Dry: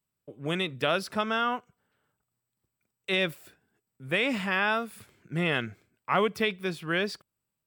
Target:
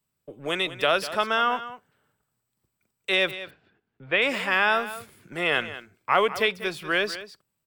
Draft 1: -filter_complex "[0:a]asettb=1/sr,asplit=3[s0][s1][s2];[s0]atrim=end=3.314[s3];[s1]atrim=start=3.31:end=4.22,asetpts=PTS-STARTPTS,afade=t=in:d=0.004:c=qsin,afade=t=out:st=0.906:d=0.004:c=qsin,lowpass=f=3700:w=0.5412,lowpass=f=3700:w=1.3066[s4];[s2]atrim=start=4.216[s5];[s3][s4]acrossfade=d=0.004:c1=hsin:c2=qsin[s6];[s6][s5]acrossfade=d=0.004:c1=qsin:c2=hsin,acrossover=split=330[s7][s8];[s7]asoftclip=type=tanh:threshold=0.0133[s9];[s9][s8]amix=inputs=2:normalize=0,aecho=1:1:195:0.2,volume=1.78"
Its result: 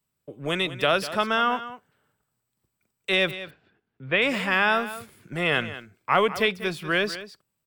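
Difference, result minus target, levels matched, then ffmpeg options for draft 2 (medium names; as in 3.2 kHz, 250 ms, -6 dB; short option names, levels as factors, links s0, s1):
saturation: distortion -5 dB
-filter_complex "[0:a]asettb=1/sr,asplit=3[s0][s1][s2];[s0]atrim=end=3.314[s3];[s1]atrim=start=3.31:end=4.22,asetpts=PTS-STARTPTS,afade=t=in:d=0.004:c=qsin,afade=t=out:st=0.906:d=0.004:c=qsin,lowpass=f=3700:w=0.5412,lowpass=f=3700:w=1.3066[s4];[s2]atrim=start=4.216[s5];[s3][s4]acrossfade=d=0.004:c1=hsin:c2=qsin[s6];[s6][s5]acrossfade=d=0.004:c1=qsin:c2=hsin,acrossover=split=330[s7][s8];[s7]asoftclip=type=tanh:threshold=0.00335[s9];[s9][s8]amix=inputs=2:normalize=0,aecho=1:1:195:0.2,volume=1.78"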